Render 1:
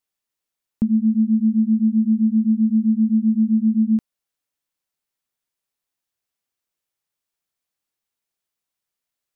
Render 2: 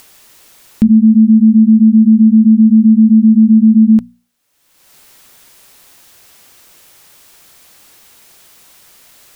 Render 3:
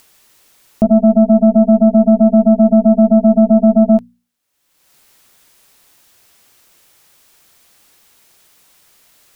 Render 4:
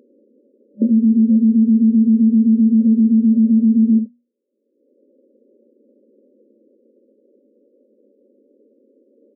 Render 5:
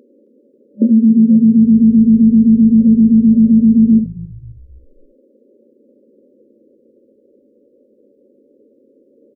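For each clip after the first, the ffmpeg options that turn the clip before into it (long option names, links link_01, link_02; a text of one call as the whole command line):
ffmpeg -i in.wav -af "bandreject=frequency=60:width_type=h:width=6,bandreject=frequency=120:width_type=h:width=6,bandreject=frequency=180:width_type=h:width=6,bandreject=frequency=240:width_type=h:width=6,acompressor=mode=upward:threshold=-37dB:ratio=2.5,alimiter=level_in=15dB:limit=-1dB:release=50:level=0:latency=1,volume=-1dB" out.wav
ffmpeg -i in.wav -af "aeval=exprs='0.841*(cos(1*acos(clip(val(0)/0.841,-1,1)))-cos(1*PI/2))+0.422*(cos(3*acos(clip(val(0)/0.841,-1,1)))-cos(3*PI/2))+0.0188*(cos(6*acos(clip(val(0)/0.841,-1,1)))-cos(6*PI/2))':channel_layout=same,volume=-1.5dB" out.wav
ffmpeg -i in.wav -af "aecho=1:1:12|72:0.531|0.282,acrusher=samples=23:mix=1:aa=0.000001:lfo=1:lforange=13.8:lforate=0.36,afftfilt=real='re*between(b*sr/4096,210,590)':imag='im*between(b*sr/4096,210,590)':win_size=4096:overlap=0.75" out.wav
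ffmpeg -i in.wav -filter_complex "[0:a]asplit=5[link_01][link_02][link_03][link_04][link_05];[link_02]adelay=267,afreqshift=-53,volume=-20dB[link_06];[link_03]adelay=534,afreqshift=-106,volume=-25.5dB[link_07];[link_04]adelay=801,afreqshift=-159,volume=-31dB[link_08];[link_05]adelay=1068,afreqshift=-212,volume=-36.5dB[link_09];[link_01][link_06][link_07][link_08][link_09]amix=inputs=5:normalize=0,volume=4dB" out.wav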